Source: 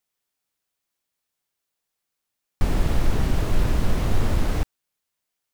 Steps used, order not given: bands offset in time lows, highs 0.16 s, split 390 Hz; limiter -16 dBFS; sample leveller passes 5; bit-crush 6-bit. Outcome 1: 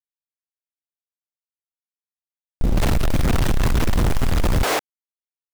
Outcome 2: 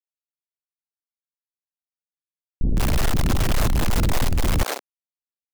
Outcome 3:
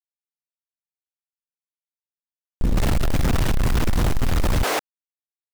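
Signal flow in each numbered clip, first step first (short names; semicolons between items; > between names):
limiter > bands offset in time > sample leveller > bit-crush; limiter > bit-crush > sample leveller > bands offset in time; bands offset in time > sample leveller > limiter > bit-crush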